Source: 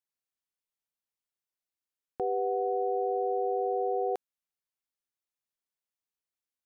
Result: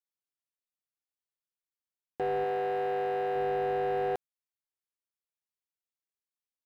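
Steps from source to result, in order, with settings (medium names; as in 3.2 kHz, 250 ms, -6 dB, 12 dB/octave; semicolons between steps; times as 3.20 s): waveshaping leveller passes 2; 2.44–3.36 s: bass shelf 160 Hz -10.5 dB; trim -3.5 dB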